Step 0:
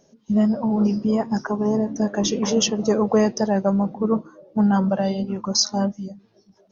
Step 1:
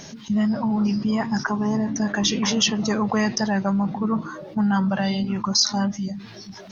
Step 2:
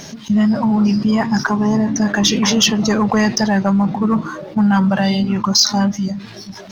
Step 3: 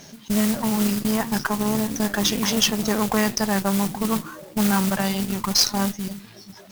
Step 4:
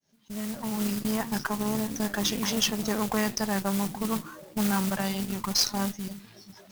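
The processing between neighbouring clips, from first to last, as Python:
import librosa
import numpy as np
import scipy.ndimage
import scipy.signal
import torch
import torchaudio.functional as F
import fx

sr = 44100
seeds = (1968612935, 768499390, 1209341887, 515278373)

y1 = fx.graphic_eq(x, sr, hz=(125, 500, 1000, 2000, 4000), db=(4, -10, 3, 8, 7))
y1 = fx.env_flatten(y1, sr, amount_pct=50)
y1 = y1 * librosa.db_to_amplitude(-5.5)
y2 = fx.leveller(y1, sr, passes=1)
y2 = y2 * librosa.db_to_amplitude(3.5)
y3 = fx.mod_noise(y2, sr, seeds[0], snr_db=11)
y3 = fx.cheby_harmonics(y3, sr, harmonics=(3, 6), levels_db=(-13, -29), full_scale_db=-2.0)
y3 = y3 * librosa.db_to_amplitude(-1.0)
y4 = fx.fade_in_head(y3, sr, length_s=0.99)
y4 = y4 * librosa.db_to_amplitude(-6.0)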